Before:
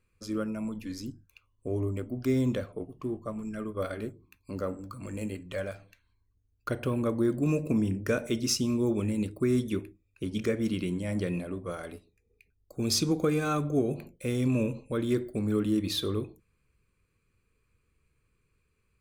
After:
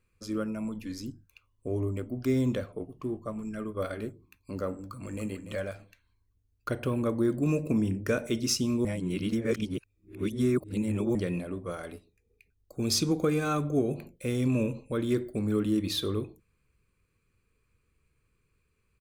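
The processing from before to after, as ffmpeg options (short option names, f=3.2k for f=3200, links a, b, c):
-filter_complex "[0:a]asplit=2[a][b];[b]afade=t=in:st=4.74:d=0.01,afade=t=out:st=5.26:d=0.01,aecho=0:1:290|580:0.298538|0.0447807[c];[a][c]amix=inputs=2:normalize=0,asplit=3[d][e][f];[d]atrim=end=8.852[g];[e]atrim=start=8.848:end=11.152,asetpts=PTS-STARTPTS,areverse[h];[f]atrim=start=11.148[i];[g][h]acrossfade=d=0.004:c1=hsin:c2=hsin[j];[j][i]acrossfade=d=0.004:c1=hsin:c2=hsin"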